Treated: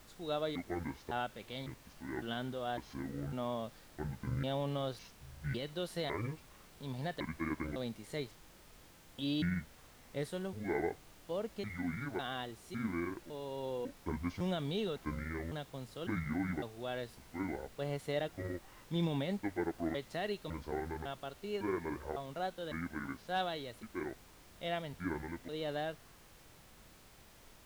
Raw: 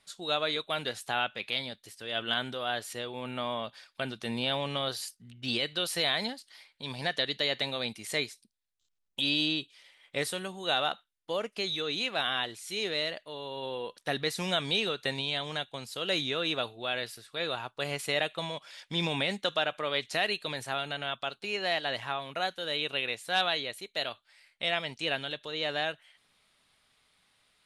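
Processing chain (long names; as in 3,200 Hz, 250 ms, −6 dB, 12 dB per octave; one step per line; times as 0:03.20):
pitch shifter gated in a rhythm −10 semitones, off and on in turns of 554 ms
tilt shelving filter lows +7 dB
notch filter 2,500 Hz, Q 7.1
background noise pink −51 dBFS
harmonic and percussive parts rebalanced percussive −5 dB
level −6 dB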